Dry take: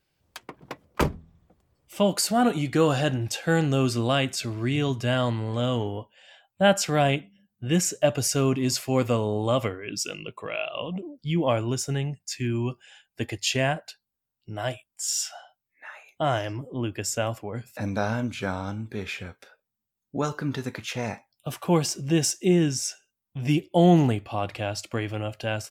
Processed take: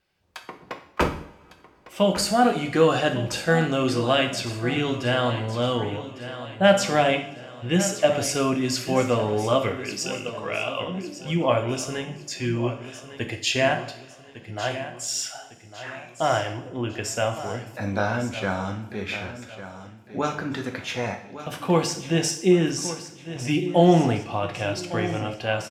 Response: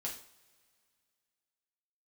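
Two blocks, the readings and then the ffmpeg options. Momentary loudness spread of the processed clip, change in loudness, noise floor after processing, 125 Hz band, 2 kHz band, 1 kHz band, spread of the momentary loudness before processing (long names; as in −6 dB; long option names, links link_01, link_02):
16 LU, +1.5 dB, −50 dBFS, −1.0 dB, +4.0 dB, +3.5 dB, 14 LU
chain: -filter_complex "[0:a]lowpass=frequency=3400:poles=1,lowshelf=frequency=490:gain=-6.5,aecho=1:1:1154|2308|3462|4616:0.224|0.094|0.0395|0.0166,asplit=2[link_01][link_02];[1:a]atrim=start_sample=2205,asetrate=34398,aresample=44100[link_03];[link_02][link_03]afir=irnorm=-1:irlink=0,volume=0dB[link_04];[link_01][link_04]amix=inputs=2:normalize=0"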